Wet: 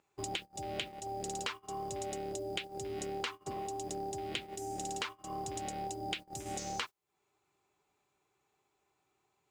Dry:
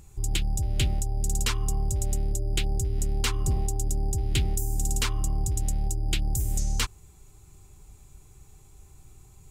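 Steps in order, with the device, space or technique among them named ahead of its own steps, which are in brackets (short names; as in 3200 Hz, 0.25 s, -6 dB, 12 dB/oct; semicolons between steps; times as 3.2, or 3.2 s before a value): baby monitor (BPF 460–3200 Hz; compressor 12:1, threshold -51 dBFS, peak gain reduction 23 dB; white noise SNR 26 dB; gate -57 dBFS, range -26 dB); gain +15 dB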